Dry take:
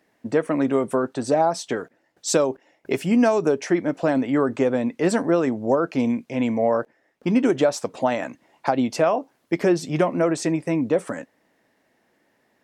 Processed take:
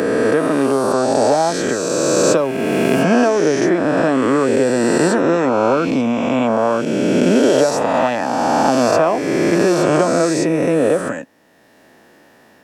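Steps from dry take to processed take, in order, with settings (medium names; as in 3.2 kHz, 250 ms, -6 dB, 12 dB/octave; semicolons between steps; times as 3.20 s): reverse spectral sustain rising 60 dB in 2.69 s; band-stop 2.1 kHz, Q 9.5; three bands compressed up and down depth 40%; trim +1.5 dB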